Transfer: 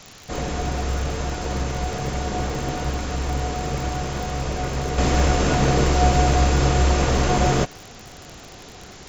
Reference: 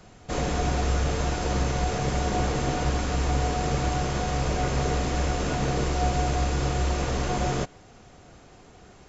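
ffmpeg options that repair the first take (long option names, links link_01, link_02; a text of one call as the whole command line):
ffmpeg -i in.wav -af "adeclick=threshold=4,afwtdn=0.0079,asetnsamples=nb_out_samples=441:pad=0,asendcmd='4.98 volume volume -7.5dB',volume=0dB" out.wav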